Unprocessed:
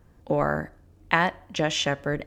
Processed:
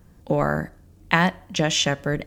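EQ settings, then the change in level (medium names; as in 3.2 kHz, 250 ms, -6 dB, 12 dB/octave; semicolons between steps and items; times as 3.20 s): peaking EQ 180 Hz +7 dB 0.31 oct; bass shelf 420 Hz +3.5 dB; treble shelf 3.4 kHz +9.5 dB; 0.0 dB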